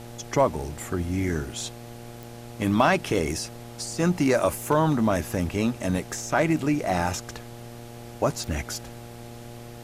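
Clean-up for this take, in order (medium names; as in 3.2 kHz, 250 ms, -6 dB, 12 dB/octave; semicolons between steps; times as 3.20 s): clip repair -10 dBFS; de-click; de-hum 118.4 Hz, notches 7; noise print and reduce 29 dB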